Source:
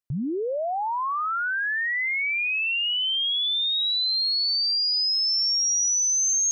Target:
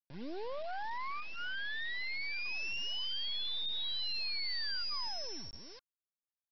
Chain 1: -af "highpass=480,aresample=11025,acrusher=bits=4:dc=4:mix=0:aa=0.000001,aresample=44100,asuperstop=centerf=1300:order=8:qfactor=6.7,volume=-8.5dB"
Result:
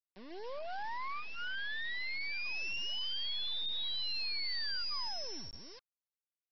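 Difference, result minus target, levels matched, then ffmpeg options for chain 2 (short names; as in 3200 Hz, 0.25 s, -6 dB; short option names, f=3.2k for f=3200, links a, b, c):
250 Hz band -5.5 dB
-af "highpass=230,aresample=11025,acrusher=bits=4:dc=4:mix=0:aa=0.000001,aresample=44100,asuperstop=centerf=1300:order=8:qfactor=6.7,volume=-8.5dB"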